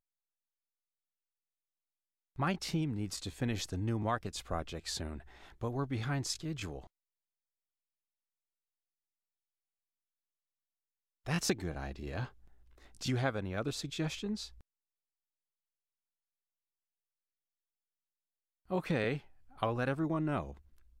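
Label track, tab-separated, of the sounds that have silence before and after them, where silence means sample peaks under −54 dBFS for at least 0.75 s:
2.360000	6.870000	sound
11.260000	14.610000	sound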